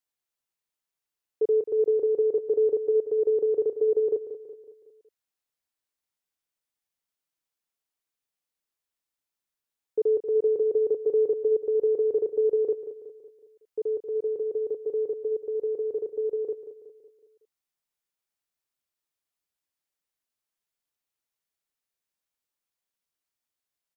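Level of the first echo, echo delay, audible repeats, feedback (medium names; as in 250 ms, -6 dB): -11.5 dB, 185 ms, 4, 49%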